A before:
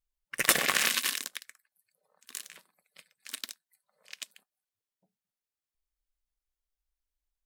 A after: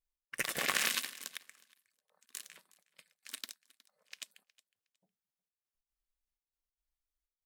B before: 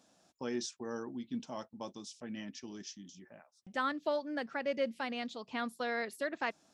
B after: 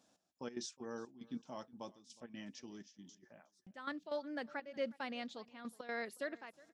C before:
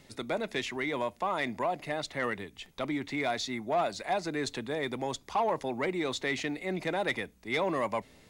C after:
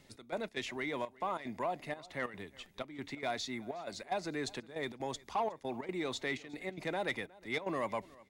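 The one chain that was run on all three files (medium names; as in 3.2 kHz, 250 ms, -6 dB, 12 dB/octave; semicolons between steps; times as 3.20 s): trance gate "xx..xx.xxxx" 186 bpm -12 dB; on a send: feedback delay 364 ms, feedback 19%, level -22.5 dB; on the sum: trim -5 dB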